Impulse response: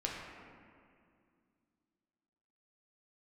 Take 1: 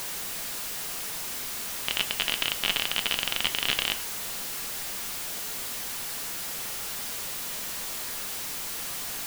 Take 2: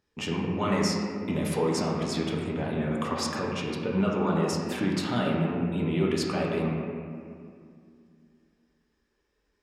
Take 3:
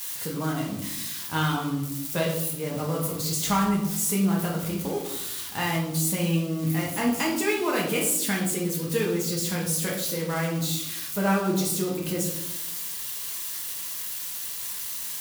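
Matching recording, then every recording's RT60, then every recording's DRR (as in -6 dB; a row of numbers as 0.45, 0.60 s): 2; 0.60, 2.3, 0.90 s; 8.0, -3.0, -3.5 dB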